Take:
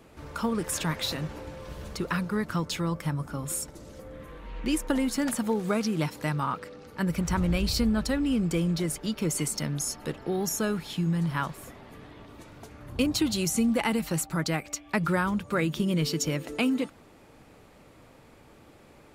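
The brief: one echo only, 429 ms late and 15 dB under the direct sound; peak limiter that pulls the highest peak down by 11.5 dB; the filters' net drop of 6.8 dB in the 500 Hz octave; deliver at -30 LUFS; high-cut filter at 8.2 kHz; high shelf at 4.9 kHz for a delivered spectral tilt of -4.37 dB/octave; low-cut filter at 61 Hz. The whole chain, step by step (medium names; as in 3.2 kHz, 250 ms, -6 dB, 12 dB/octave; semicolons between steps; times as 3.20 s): high-pass 61 Hz; low-pass 8.2 kHz; peaking EQ 500 Hz -9 dB; treble shelf 4.9 kHz +5 dB; peak limiter -25 dBFS; delay 429 ms -15 dB; trim +3.5 dB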